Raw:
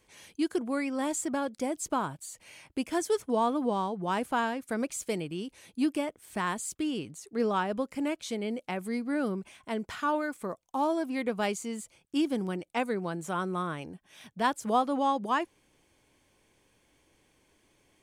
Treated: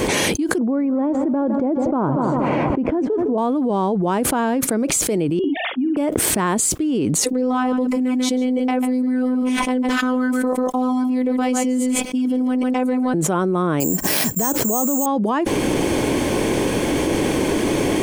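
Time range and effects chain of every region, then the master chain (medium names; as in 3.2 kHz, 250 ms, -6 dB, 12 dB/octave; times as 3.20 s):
0.58–3.38 s: low-pass 1.1 kHz + multi-head delay 79 ms, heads second and third, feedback 43%, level -19.5 dB
5.39–5.97 s: formants replaced by sine waves + doubling 50 ms -7 dB
7.24–13.14 s: robot voice 254 Hz + delay 143 ms -12.5 dB
13.80–15.06 s: distance through air 190 m + careless resampling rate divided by 6×, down filtered, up zero stuff
whole clip: peaking EQ 320 Hz +12.5 dB 2.7 oct; loudness maximiser +15.5 dB; level flattener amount 100%; trim -15 dB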